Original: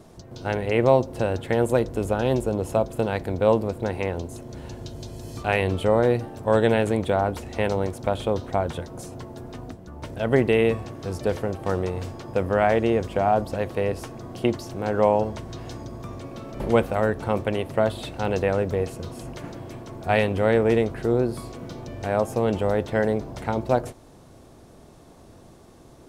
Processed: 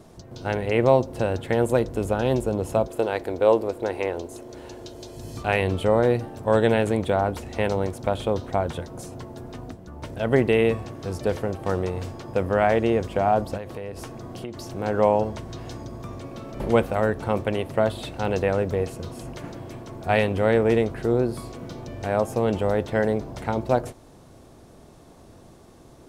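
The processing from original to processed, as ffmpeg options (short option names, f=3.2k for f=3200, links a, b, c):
-filter_complex "[0:a]asettb=1/sr,asplit=3[a][b][c];[a]atrim=end=2.874[d];[b]atrim=start=2.87:end=5.17,asetpts=PTS-STARTPTS,afade=t=in:d=0.004:c=qsin,afade=t=out:st=2.296:d=0.004:c=qsin,lowshelf=f=250:t=q:w=1.5:g=-8.5[e];[c]atrim=start=5.166[f];[d][e]acrossfade=d=0.004:c1=hsin:c2=qsin[g];[g][f]acrossfade=d=0.004:c1=qsin:c2=hsin,asettb=1/sr,asplit=3[h][i][j];[h]atrim=end=13.574[k];[i]atrim=start=13.57:end=14.57,asetpts=PTS-STARTPTS,afade=t=in:d=0.004:c=qsin,afade=t=out:st=0.996:d=0.004:c=qsin,acompressor=threshold=-30dB:ratio=6:attack=3.2:release=140:knee=1:detection=peak[l];[j]atrim=start=14.566[m];[k][l]acrossfade=d=0.004:c1=hsin:c2=qsin[n];[n][m]acrossfade=d=0.004:c1=qsin:c2=hsin"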